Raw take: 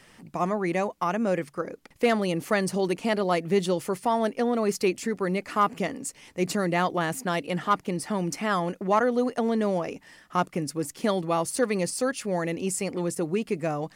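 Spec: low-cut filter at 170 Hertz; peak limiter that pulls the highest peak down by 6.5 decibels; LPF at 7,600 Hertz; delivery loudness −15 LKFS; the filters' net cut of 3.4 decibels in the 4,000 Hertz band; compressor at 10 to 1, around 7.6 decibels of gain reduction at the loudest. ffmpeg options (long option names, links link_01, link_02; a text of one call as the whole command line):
ffmpeg -i in.wav -af "highpass=170,lowpass=7600,equalizer=frequency=4000:width_type=o:gain=-4.5,acompressor=threshold=-25dB:ratio=10,volume=18.5dB,alimiter=limit=-4dB:level=0:latency=1" out.wav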